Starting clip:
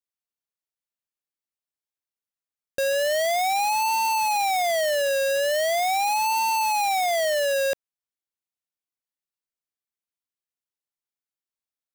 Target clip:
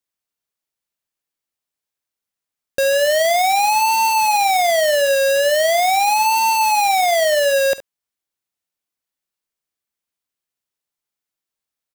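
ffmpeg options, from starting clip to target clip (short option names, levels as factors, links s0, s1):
-af "aecho=1:1:49|70:0.133|0.158,volume=2.24"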